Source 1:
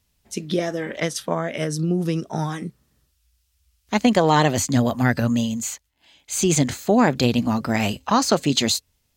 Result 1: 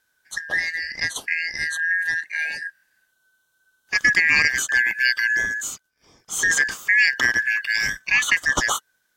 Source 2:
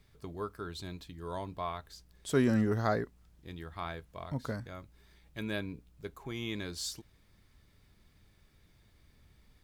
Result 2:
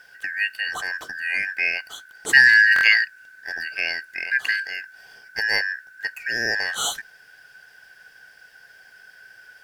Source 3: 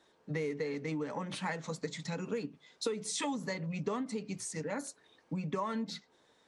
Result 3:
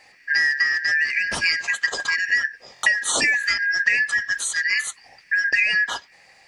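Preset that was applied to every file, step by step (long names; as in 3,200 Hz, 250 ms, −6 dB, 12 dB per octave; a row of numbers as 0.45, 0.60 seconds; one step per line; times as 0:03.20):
band-splitting scrambler in four parts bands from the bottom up 3142
buffer that repeats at 0:02.74, samples 1,024, times 3
loudness normalisation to −20 LKFS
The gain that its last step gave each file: −1.0, +13.5, +15.5 decibels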